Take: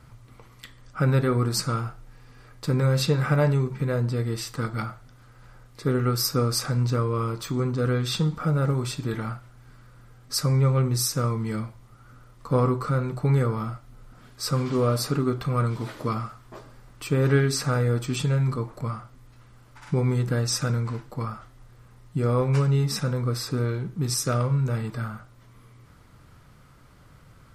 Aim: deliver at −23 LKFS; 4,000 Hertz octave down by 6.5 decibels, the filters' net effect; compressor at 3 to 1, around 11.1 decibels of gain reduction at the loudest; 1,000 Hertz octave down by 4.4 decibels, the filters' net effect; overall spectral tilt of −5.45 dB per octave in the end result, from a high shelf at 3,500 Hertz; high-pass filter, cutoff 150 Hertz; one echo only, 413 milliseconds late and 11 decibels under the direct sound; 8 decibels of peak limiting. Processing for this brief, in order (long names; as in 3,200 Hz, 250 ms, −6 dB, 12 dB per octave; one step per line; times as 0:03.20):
high-pass filter 150 Hz
parametric band 1,000 Hz −5 dB
high-shelf EQ 3,500 Hz −3.5 dB
parametric band 4,000 Hz −5.5 dB
downward compressor 3 to 1, threshold −34 dBFS
brickwall limiter −28.5 dBFS
single-tap delay 413 ms −11 dB
level +15.5 dB